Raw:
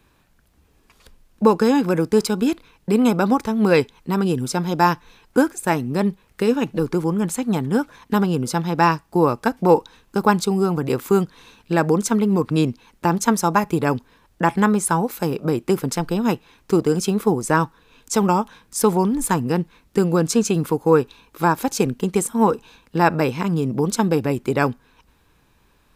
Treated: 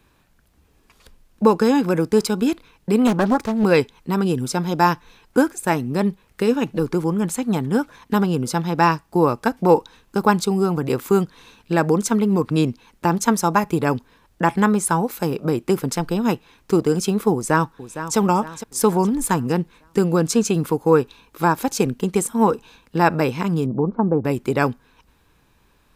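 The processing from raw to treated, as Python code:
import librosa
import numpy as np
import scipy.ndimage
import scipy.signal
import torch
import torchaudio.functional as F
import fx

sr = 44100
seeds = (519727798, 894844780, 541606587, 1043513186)

y = fx.doppler_dist(x, sr, depth_ms=0.54, at=(3.07, 3.64))
y = fx.echo_throw(y, sr, start_s=17.33, length_s=0.84, ms=460, feedback_pct=45, wet_db=-11.5)
y = fx.lowpass(y, sr, hz=1100.0, slope=24, at=(23.66, 24.25))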